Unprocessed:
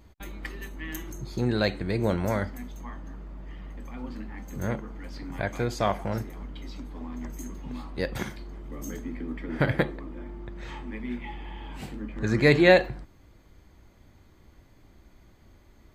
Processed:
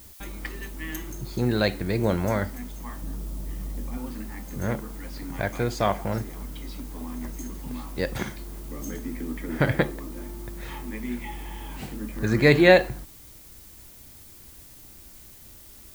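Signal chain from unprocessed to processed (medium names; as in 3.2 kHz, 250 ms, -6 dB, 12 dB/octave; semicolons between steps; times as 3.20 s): 3.02–3.98 s: tilt shelf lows +5.5 dB, about 810 Hz; added noise blue -51 dBFS; trim +2 dB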